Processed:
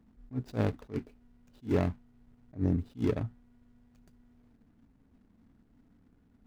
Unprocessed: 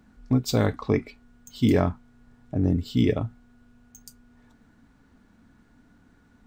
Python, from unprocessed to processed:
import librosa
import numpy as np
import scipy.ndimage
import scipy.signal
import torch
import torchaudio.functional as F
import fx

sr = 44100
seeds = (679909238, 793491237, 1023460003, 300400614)

y = scipy.signal.medfilt(x, 41)
y = fx.attack_slew(y, sr, db_per_s=280.0)
y = F.gain(torch.from_numpy(y), -5.0).numpy()